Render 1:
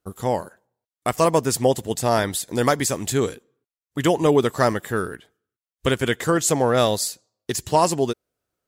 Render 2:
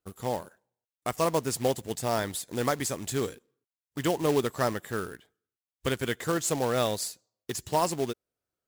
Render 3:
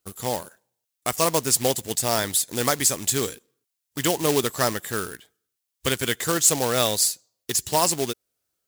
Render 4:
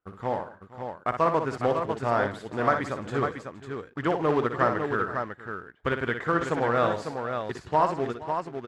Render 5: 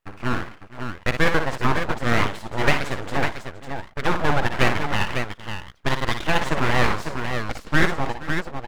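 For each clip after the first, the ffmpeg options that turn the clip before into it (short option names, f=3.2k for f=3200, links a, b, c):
-af "acrusher=bits=3:mode=log:mix=0:aa=0.000001,volume=-8.5dB"
-af "highshelf=f=2.7k:g=12,volume=2.5dB"
-filter_complex "[0:a]lowpass=f=1.4k:t=q:w=1.8,asplit=2[a][b];[b]aecho=0:1:59|166|469|550:0.422|0.1|0.126|0.473[c];[a][c]amix=inputs=2:normalize=0,volume=-3dB"
-af "aeval=exprs='abs(val(0))':c=same,volume=7dB"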